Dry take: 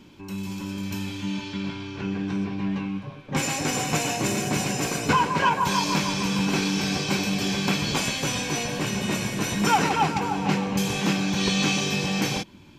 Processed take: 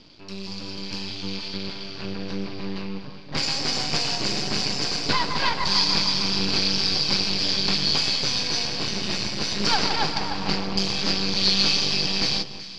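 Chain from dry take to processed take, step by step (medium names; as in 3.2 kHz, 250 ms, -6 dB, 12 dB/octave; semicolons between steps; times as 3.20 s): half-wave rectifier; resonant low-pass 4.7 kHz, resonance Q 11; echo whose repeats swap between lows and highs 190 ms, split 1.2 kHz, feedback 60%, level -10.5 dB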